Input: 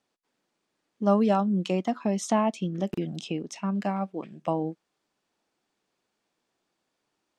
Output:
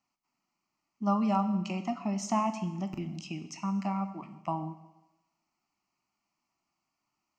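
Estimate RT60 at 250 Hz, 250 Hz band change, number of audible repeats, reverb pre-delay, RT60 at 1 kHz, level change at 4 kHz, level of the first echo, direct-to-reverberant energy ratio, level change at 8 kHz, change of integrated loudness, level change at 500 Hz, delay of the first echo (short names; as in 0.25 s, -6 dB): 0.95 s, -4.0 dB, none, 15 ms, 1.0 s, -5.5 dB, none, 8.5 dB, -3.5 dB, -4.5 dB, -11.0 dB, none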